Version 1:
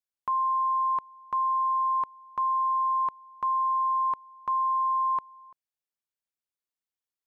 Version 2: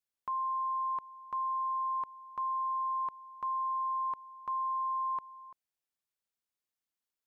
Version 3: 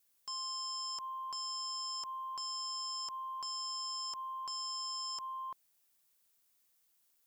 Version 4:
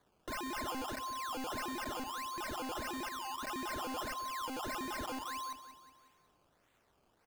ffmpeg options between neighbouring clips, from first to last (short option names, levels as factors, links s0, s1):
-af "alimiter=level_in=2:limit=0.0631:level=0:latency=1,volume=0.501"
-af "crystalizer=i=1.5:c=0,aeval=exprs='0.0335*sin(PI/2*3.98*val(0)/0.0335)':c=same,volume=0.447"
-filter_complex "[0:a]acrusher=samples=16:mix=1:aa=0.000001:lfo=1:lforange=16:lforate=1.6,asplit=2[s0][s1];[s1]aecho=0:1:184|368|552|736|920:0.251|0.123|0.0603|0.0296|0.0145[s2];[s0][s2]amix=inputs=2:normalize=0"